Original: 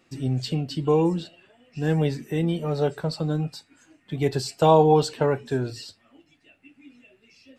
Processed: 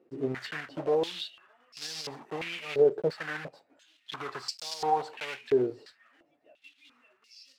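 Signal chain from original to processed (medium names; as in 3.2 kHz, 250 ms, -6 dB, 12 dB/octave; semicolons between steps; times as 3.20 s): block-companded coder 3-bit; peak limiter -18 dBFS, peak gain reduction 12 dB; step-sequenced band-pass 2.9 Hz 420–4900 Hz; trim +8 dB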